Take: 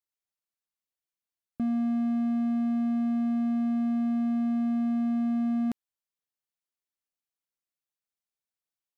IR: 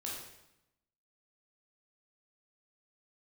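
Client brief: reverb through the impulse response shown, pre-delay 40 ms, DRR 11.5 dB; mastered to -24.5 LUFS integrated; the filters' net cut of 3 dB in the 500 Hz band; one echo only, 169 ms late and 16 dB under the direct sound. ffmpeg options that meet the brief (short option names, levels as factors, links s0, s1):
-filter_complex "[0:a]equalizer=f=500:t=o:g=-6,aecho=1:1:169:0.158,asplit=2[s0][s1];[1:a]atrim=start_sample=2205,adelay=40[s2];[s1][s2]afir=irnorm=-1:irlink=0,volume=0.266[s3];[s0][s3]amix=inputs=2:normalize=0,volume=2.24"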